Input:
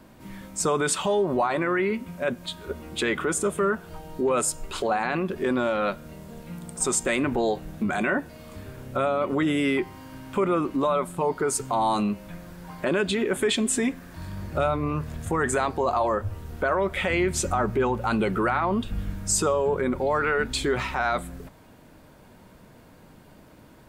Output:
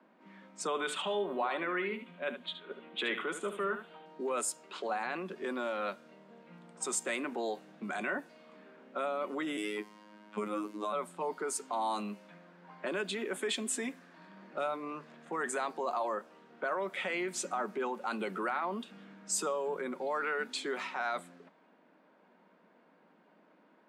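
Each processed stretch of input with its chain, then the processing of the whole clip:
0.67–4.06 s: resonant high shelf 4.2 kHz -7.5 dB, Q 3 + delay 73 ms -10 dB
9.57–10.93 s: robot voice 105 Hz + tone controls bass +10 dB, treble +7 dB
whole clip: steep high-pass 170 Hz 72 dB/octave; level-controlled noise filter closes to 2.1 kHz, open at -20.5 dBFS; bass shelf 290 Hz -9.5 dB; trim -8.5 dB

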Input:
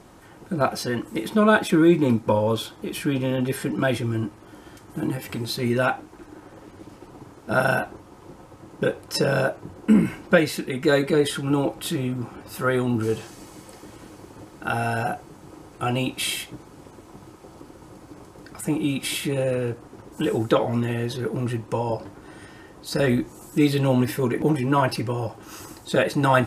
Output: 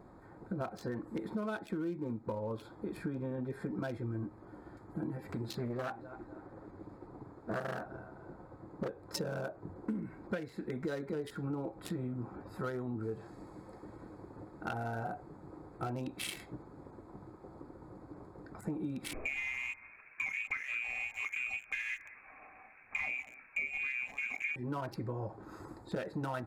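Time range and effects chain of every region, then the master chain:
5.49–8.88 s: feedback delay 255 ms, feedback 36%, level -21 dB + loudspeaker Doppler distortion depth 0.55 ms
19.13–24.56 s: bass shelf 150 Hz +8 dB + frequency inversion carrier 2.6 kHz + delay 197 ms -15.5 dB
whole clip: local Wiener filter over 15 samples; treble shelf 10 kHz +4.5 dB; compression 12:1, threshold -28 dBFS; trim -6 dB

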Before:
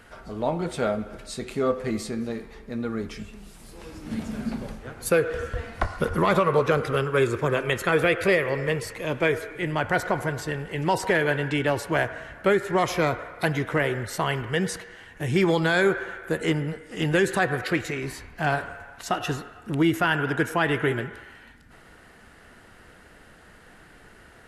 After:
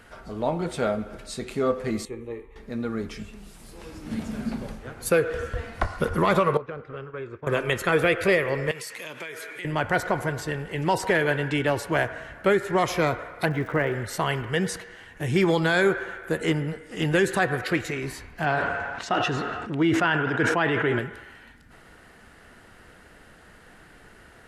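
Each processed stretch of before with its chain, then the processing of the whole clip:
2.05–2.56 s: treble shelf 3.3 kHz -10.5 dB + static phaser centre 1 kHz, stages 8 + three bands expanded up and down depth 70%
6.57–7.47 s: low-pass 2.5 kHz + expander -22 dBFS + compression 3:1, threshold -36 dBFS
8.71–9.65 s: high-pass 140 Hz 24 dB/octave + tilt shelf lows -7.5 dB, about 1.1 kHz + compression, threshold -33 dBFS
13.45–13.92 s: low-pass 2.2 kHz + crackle 330 per s -42 dBFS
18.44–20.99 s: high-pass 150 Hz 6 dB/octave + distance through air 110 m + decay stretcher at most 27 dB/s
whole clip: none

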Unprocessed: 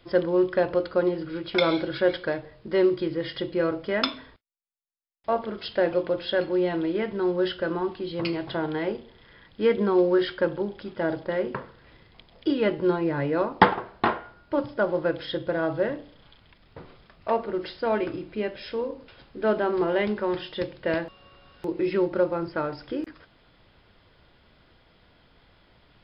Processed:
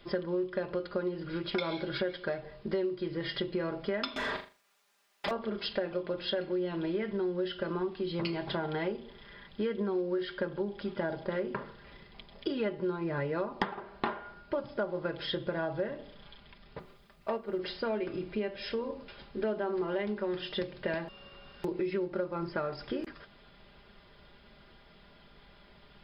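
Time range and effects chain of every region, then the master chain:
4.16–5.31 s: overdrive pedal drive 38 dB, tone 2 kHz, clips at -13 dBFS + compression, threshold -28 dBFS + flutter echo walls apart 6.9 m, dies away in 0.31 s
16.79–17.59 s: word length cut 12-bit, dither triangular + upward expansion, over -36 dBFS
whole clip: comb 5 ms, depth 57%; compression 6:1, threshold -30 dBFS

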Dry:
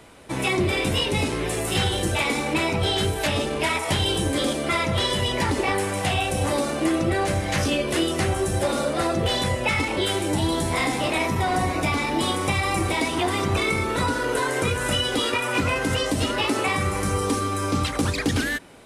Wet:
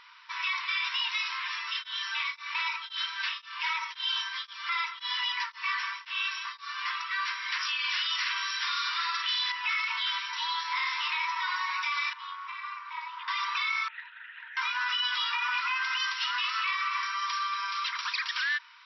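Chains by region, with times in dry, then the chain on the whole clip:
1.58–6.82 s: comb 4.5 ms, depth 30% + tremolo of two beating tones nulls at 1.9 Hz
7.79–9.52 s: tilt shelf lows -7 dB, about 1.1 kHz + doubling 49 ms -4 dB
12.13–13.28 s: band-pass filter 370 Hz, Q 0.59 + AM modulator 280 Hz, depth 50%
13.88–14.57 s: LPC vocoder at 8 kHz whisper + hard clipper -16.5 dBFS + vowel filter e
15.68–18.13 s: band-stop 900 Hz, Q 14 + delay 236 ms -10 dB
whole clip: FFT band-pass 910–5800 Hz; peak limiter -21 dBFS

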